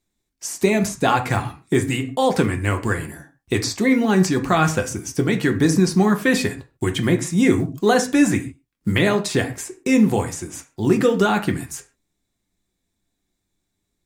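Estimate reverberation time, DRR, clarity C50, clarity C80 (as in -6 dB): not exponential, 5.0 dB, 13.5 dB, 18.5 dB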